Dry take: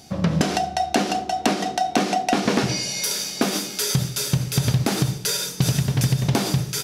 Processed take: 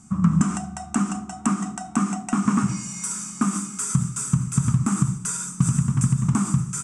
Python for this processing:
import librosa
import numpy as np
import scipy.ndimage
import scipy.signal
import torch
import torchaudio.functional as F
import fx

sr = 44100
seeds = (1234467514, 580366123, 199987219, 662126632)

y = fx.curve_eq(x, sr, hz=(130.0, 210.0, 530.0, 820.0, 1200.0, 1700.0, 2600.0, 4300.0, 8100.0, 13000.0), db=(0, 7, -25, -10, 8, -10, -12, -25, 10, -26))
y = F.gain(torch.from_numpy(y), -1.0).numpy()